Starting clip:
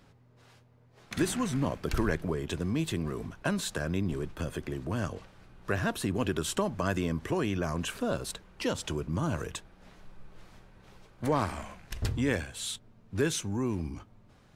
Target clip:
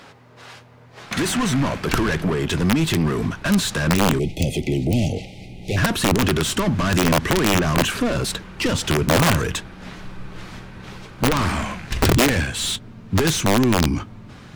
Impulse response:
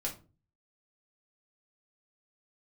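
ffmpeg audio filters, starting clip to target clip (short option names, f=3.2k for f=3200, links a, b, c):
-filter_complex "[0:a]asplit=2[a][b];[b]highpass=f=720:p=1,volume=25dB,asoftclip=type=tanh:threshold=-13dB[c];[a][c]amix=inputs=2:normalize=0,lowpass=f=4.7k:p=1,volume=-6dB,asoftclip=type=tanh:threshold=-20dB,asubboost=boost=5:cutoff=250,aeval=exprs='(mod(4.22*val(0)+1,2)-1)/4.22':c=same,asplit=3[d][e][f];[d]afade=t=out:st=4.18:d=0.02[g];[e]asuperstop=centerf=1300:order=20:qfactor=1.1,afade=t=in:st=4.18:d=0.02,afade=t=out:st=5.76:d=0.02[h];[f]afade=t=in:st=5.76:d=0.02[i];[g][h][i]amix=inputs=3:normalize=0,volume=2.5dB"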